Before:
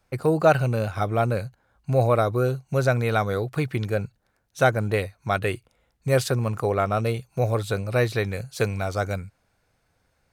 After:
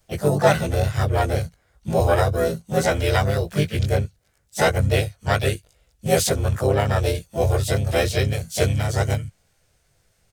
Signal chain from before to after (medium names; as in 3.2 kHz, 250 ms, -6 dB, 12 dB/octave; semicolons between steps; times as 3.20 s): short-time spectra conjugated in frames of 40 ms; harmony voices -5 st -9 dB, +5 st -4 dB; ten-band graphic EQ 250 Hz -9 dB, 1 kHz -9 dB, 2 kHz -3 dB, 8 kHz +5 dB; trim +8 dB